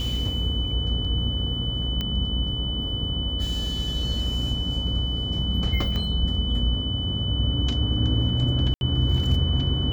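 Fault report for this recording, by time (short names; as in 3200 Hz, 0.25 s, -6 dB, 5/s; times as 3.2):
buzz 60 Hz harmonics 24 -29 dBFS
tone 3000 Hz -29 dBFS
2.01 pop -15 dBFS
5.96 pop -17 dBFS
8.74–8.81 gap 71 ms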